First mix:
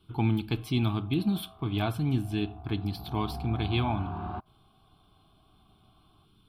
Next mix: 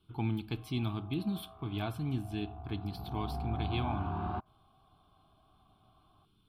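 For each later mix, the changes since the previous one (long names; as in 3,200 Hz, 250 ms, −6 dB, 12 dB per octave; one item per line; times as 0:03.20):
speech −7.0 dB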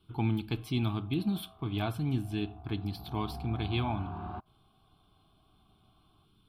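speech +3.5 dB
background −4.0 dB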